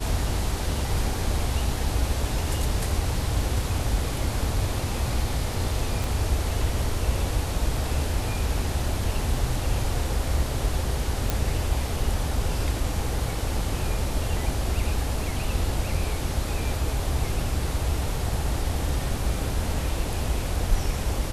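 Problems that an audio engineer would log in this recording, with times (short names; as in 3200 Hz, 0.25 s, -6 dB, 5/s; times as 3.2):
6.04 pop
11.3 pop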